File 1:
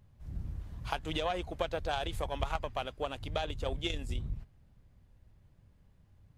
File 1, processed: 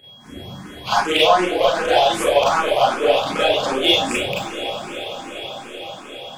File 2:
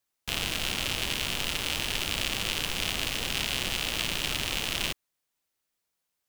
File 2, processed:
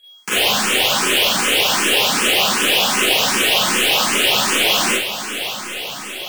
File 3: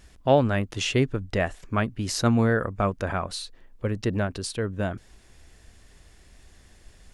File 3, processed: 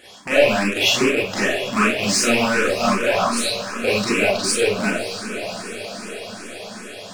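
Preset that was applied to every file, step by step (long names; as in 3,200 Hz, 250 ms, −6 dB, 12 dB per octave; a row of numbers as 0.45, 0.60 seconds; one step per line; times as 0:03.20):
loose part that buzzes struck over −29 dBFS, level −17 dBFS
high-pass filter 290 Hz 12 dB per octave
high-shelf EQ 9,000 Hz −3.5 dB
in parallel at +2.5 dB: downward compressor, threshold −34 dBFS
on the sum: soft clipping −23 dBFS
on a send: feedback delay with all-pass diffusion 587 ms, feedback 70%, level −11 dB
on the sum: steady tone 3,300 Hz −61 dBFS
four-comb reverb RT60 0.41 s, combs from 30 ms, DRR −7 dB
frequency shifter mixed with the dry sound +2.6 Hz
normalise the peak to −2 dBFS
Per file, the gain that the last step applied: +11.5, +11.0, +5.5 decibels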